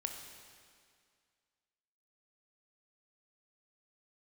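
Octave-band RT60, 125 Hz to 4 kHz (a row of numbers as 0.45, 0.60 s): 2.0, 2.1, 2.1, 2.1, 2.1, 2.0 s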